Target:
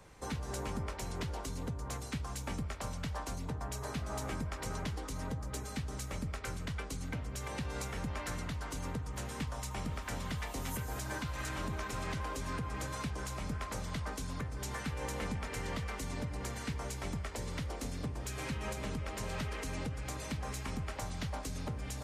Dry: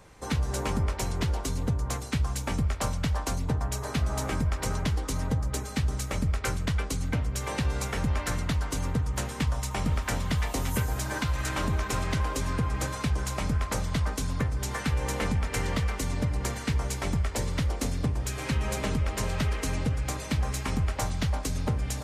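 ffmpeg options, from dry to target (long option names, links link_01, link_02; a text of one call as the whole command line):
ffmpeg -i in.wav -filter_complex "[0:a]acrossover=split=170[link_01][link_02];[link_01]acompressor=threshold=-35dB:ratio=6[link_03];[link_02]alimiter=level_in=2dB:limit=-24dB:level=0:latency=1:release=186,volume=-2dB[link_04];[link_03][link_04]amix=inputs=2:normalize=0,volume=-4dB" out.wav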